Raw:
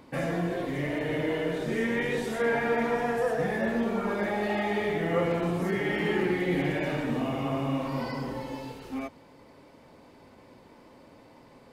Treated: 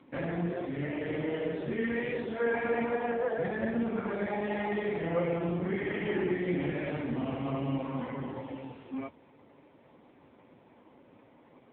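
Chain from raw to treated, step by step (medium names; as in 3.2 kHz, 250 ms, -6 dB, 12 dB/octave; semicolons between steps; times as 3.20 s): trim -2 dB; AMR-NB 5.9 kbps 8 kHz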